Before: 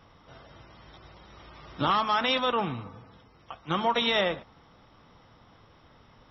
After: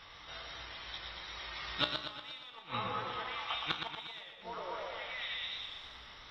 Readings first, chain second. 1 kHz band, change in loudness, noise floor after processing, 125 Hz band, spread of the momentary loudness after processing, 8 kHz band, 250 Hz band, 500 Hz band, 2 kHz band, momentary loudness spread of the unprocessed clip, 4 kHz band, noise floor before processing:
-11.5 dB, -13.0 dB, -53 dBFS, -11.0 dB, 11 LU, no reading, -15.5 dB, -14.0 dB, -6.5 dB, 16 LU, -5.5 dB, -58 dBFS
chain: in parallel at -4 dB: saturation -31 dBFS, distortion -6 dB; on the sum: ten-band graphic EQ 125 Hz -9 dB, 250 Hz -8 dB, 500 Hz -3 dB, 2 kHz +7 dB, 4 kHz +12 dB; on a send: repeats whose band climbs or falls 206 ms, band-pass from 240 Hz, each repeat 0.7 oct, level -7 dB; on the sum: inverted gate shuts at -13 dBFS, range -30 dB; feedback comb 60 Hz, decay 0.46 s, harmonics all, mix 70%; modulated delay 118 ms, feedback 55%, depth 76 cents, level -6 dB; trim +2.5 dB

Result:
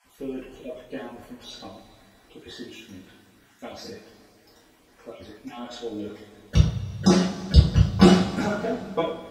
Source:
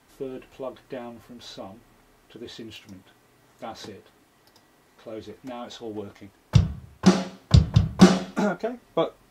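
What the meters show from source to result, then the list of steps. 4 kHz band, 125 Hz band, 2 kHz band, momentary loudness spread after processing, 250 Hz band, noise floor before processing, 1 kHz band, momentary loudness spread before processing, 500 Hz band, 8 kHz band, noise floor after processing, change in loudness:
+2.0 dB, +0.5 dB, +1.0 dB, 24 LU, +0.5 dB, -60 dBFS, 0.0 dB, 23 LU, +1.0 dB, 0.0 dB, -58 dBFS, +0.5 dB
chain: random holes in the spectrogram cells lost 31%; two-slope reverb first 0.4 s, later 2.7 s, from -18 dB, DRR -7 dB; trim -5 dB

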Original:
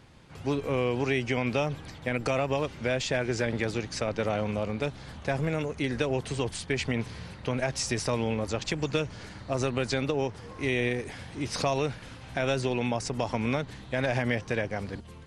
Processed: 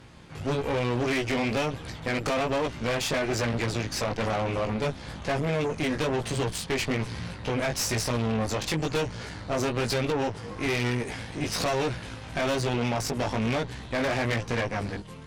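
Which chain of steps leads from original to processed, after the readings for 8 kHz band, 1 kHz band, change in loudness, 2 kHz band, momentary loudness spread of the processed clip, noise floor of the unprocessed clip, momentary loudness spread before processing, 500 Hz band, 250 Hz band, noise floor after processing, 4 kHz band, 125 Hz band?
+4.0 dB, +3.5 dB, +1.5 dB, +1.5 dB, 6 LU, -46 dBFS, 7 LU, +1.0 dB, +1.5 dB, -42 dBFS, +3.5 dB, +1.5 dB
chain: chorus 1.1 Hz, delay 17 ms, depth 2.5 ms; saturation -31 dBFS, distortion -9 dB; Chebyshev shaper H 2 -8 dB, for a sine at -31 dBFS; trim +8 dB

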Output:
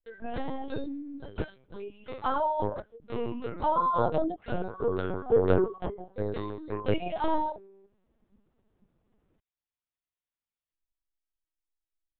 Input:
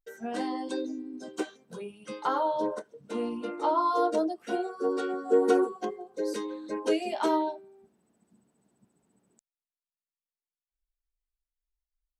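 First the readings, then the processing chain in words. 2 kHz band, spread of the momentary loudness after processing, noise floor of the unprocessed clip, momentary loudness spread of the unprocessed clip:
-2.0 dB, 14 LU, under -85 dBFS, 13 LU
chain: LPC vocoder at 8 kHz pitch kept

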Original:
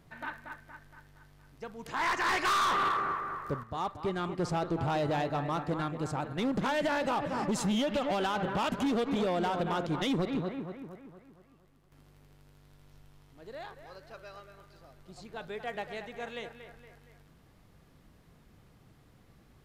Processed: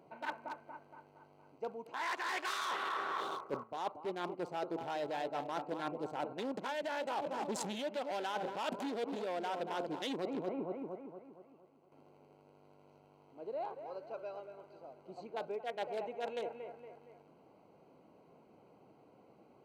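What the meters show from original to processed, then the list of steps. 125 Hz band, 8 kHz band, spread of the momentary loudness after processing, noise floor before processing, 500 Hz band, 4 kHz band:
-17.5 dB, -6.5 dB, 15 LU, -61 dBFS, -4.5 dB, -7.0 dB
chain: local Wiener filter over 25 samples; high-pass 420 Hz 12 dB/octave; band-stop 1.2 kHz, Q 7.8; reverse; compression 10:1, threshold -44 dBFS, peak gain reduction 16.5 dB; reverse; trim +9 dB

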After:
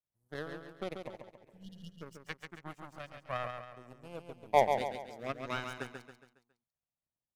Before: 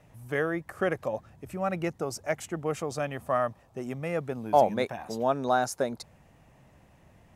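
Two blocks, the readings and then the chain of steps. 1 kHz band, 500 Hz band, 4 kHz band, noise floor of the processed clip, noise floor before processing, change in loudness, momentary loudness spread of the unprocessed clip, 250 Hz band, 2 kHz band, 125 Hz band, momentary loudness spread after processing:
-6.5 dB, -9.0 dB, -4.0 dB, under -85 dBFS, -60 dBFS, -7.5 dB, 10 LU, -13.0 dB, -7.5 dB, -11.0 dB, 21 LU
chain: power-law waveshaper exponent 2; LFO notch saw down 0.29 Hz 290–3000 Hz; spectral replace 1.48–1.87 s, 300–2800 Hz both; on a send: feedback delay 138 ms, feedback 44%, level -6 dB

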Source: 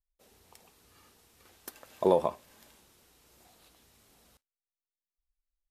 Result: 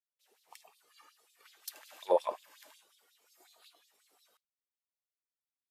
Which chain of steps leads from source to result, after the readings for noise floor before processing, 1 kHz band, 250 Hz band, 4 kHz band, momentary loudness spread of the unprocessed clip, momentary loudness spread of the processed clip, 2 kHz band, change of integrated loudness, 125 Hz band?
under -85 dBFS, -3.5 dB, -14.5 dB, +0.5 dB, 15 LU, 18 LU, -1.5 dB, -7.0 dB, under -25 dB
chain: peak limiter -19 dBFS, peak gain reduction 8 dB; spectral noise reduction 10 dB; LFO high-pass sine 5.5 Hz 400–4200 Hz

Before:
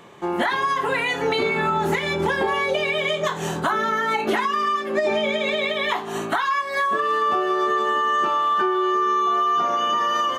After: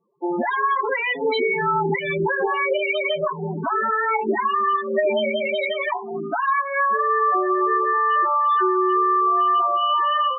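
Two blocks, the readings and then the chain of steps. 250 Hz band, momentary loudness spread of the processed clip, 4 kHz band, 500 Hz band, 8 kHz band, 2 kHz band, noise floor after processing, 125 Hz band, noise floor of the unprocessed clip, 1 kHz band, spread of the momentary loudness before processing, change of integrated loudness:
0.0 dB, 6 LU, -4.0 dB, +1.0 dB, under -40 dB, -0.5 dB, -30 dBFS, -1.0 dB, -29 dBFS, +1.5 dB, 3 LU, +1.0 dB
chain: gate with hold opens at -26 dBFS; loudest bins only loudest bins 8; trim +2 dB

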